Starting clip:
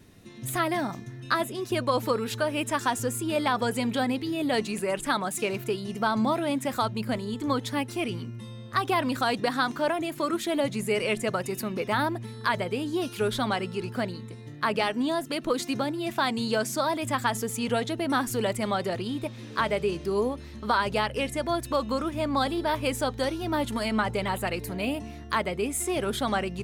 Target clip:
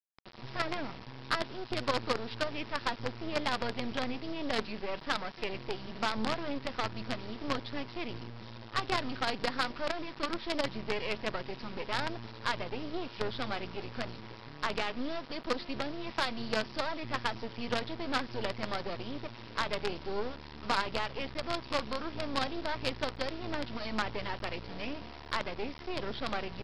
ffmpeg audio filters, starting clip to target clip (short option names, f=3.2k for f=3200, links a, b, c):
-af "aeval=exprs='val(0)+0.00355*sin(2*PI*960*n/s)':c=same,aresample=11025,acrusher=bits=4:dc=4:mix=0:aa=0.000001,aresample=44100,asoftclip=type=tanh:threshold=-13dB,volume=-4dB"